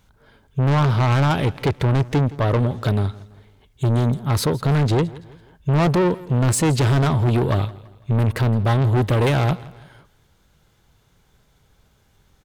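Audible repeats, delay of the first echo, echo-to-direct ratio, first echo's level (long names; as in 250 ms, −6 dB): 3, 166 ms, −19.0 dB, −20.0 dB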